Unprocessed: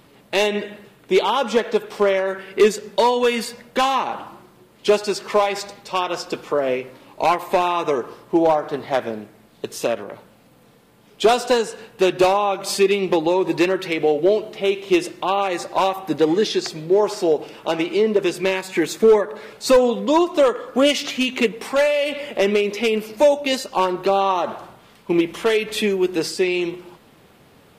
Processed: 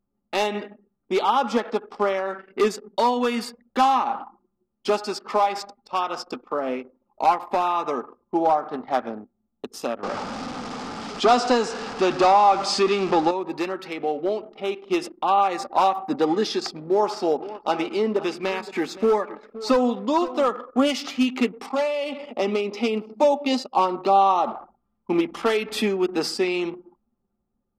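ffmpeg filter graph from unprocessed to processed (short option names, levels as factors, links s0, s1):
-filter_complex "[0:a]asettb=1/sr,asplit=3[s0][s1][s2];[s0]atrim=end=10.034[s3];[s1]atrim=start=10.03:end=13.31,asetpts=PTS-STARTPTS,afade=t=in:d=0.004:c=qsin,afade=t=out:st=3.276:d=0.004:c=qsin,aeval=exprs='val(0)+0.5*0.0447*sgn(val(0))':c=same,lowpass=f=7200:w=0.5412,lowpass=f=7200:w=1.3066,acontrast=68[s4];[s2]atrim=start=13.306[s5];[s3][s4]acrossfade=d=0.004:c1=hsin:c2=qsin[s6];[s6][s5]acrossfade=d=0.004:c1=qsin:c2=hsin,asettb=1/sr,asplit=3[s7][s8][s9];[s7]atrim=end=16.674[s10];[s8]atrim=start=16.67:end=20.61,asetpts=PTS-STARTPTS,afade=t=in:d=0.004:c=qsin,afade=t=out:st=3.936:d=0.004:c=qsin,acrossover=split=5800[s11][s12];[s12]acompressor=threshold=0.00398:ratio=4:attack=1:release=60[s13];[s11][s13]amix=inputs=2:normalize=0,highshelf=f=7400:g=7,aecho=1:1:519:0.168,atrim=end_sample=173754[s14];[s9]atrim=start=20.606[s15];[s10][s14]acrossfade=d=0.004:c1=hsin:c2=qsin[s16];[s16][s15]acrossfade=d=0.004:c1=qsin:c2=hsin,asettb=1/sr,asplit=3[s17][s18][s19];[s17]atrim=end=21.664[s20];[s18]atrim=start=21.66:end=24.56,asetpts=PTS-STARTPTS,afade=t=in:d=0.004:c=qsin,afade=t=out:st=2.896:d=0.004:c=qsin,acrossover=split=7000[s21][s22];[s22]acompressor=threshold=0.00355:ratio=4:attack=1:release=60[s23];[s21][s23]amix=inputs=2:normalize=0,highpass=f=99:w=0.5412,highpass=f=99:w=1.3066,equalizer=f=1600:t=o:w=0.45:g=-10[s24];[s19]atrim=start=24.556[s25];[s20][s24]acrossfade=d=0.004:c1=hsin:c2=qsin[s26];[s26][s25]acrossfade=d=0.004:c1=qsin:c2=hsin,anlmdn=10,equalizer=f=125:t=o:w=0.33:g=-9,equalizer=f=250:t=o:w=0.33:g=11,equalizer=f=800:t=o:w=0.33:g=10,equalizer=f=1250:t=o:w=0.33:g=11,equalizer=f=5000:t=o:w=0.33:g=6,dynaudnorm=f=460:g=7:m=3.76,volume=0.447"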